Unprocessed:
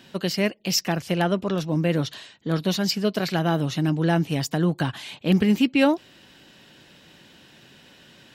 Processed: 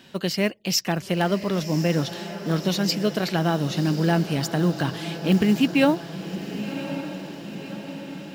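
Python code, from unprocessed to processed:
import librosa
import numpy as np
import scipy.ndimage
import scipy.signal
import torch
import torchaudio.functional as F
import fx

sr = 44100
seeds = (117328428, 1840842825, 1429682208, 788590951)

y = fx.quant_float(x, sr, bits=4)
y = fx.hum_notches(y, sr, base_hz=60, count=2)
y = fx.echo_diffused(y, sr, ms=1085, feedback_pct=60, wet_db=-11.0)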